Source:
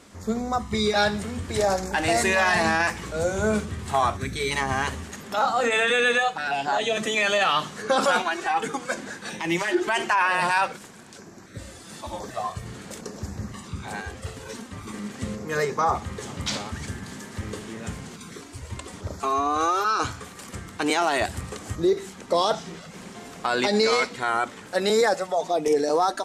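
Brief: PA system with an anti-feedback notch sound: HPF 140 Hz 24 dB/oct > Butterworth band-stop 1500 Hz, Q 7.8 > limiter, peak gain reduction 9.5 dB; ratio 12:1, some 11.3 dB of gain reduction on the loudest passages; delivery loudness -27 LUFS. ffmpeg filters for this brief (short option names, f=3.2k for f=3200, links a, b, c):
-af "acompressor=threshold=-28dB:ratio=12,highpass=f=140:w=0.5412,highpass=f=140:w=1.3066,asuperstop=centerf=1500:order=8:qfactor=7.8,volume=9.5dB,alimiter=limit=-17dB:level=0:latency=1"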